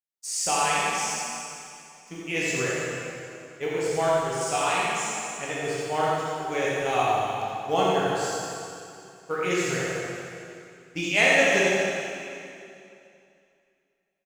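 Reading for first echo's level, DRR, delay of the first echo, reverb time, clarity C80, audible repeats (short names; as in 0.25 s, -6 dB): -3.0 dB, -7.5 dB, 85 ms, 2.6 s, -3.0 dB, 1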